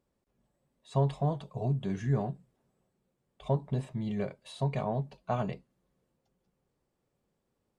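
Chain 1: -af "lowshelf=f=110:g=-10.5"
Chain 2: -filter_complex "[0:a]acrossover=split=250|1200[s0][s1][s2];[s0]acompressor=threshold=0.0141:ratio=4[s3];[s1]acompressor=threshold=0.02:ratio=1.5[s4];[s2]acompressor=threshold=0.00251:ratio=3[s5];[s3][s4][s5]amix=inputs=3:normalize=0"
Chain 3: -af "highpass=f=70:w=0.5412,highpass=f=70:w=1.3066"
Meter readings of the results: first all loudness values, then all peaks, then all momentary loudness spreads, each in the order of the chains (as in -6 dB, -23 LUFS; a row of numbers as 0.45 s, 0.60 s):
-35.5 LUFS, -37.5 LUFS, -33.0 LUFS; -17.5 dBFS, -18.5 dBFS, -14.5 dBFS; 7 LU, 6 LU, 8 LU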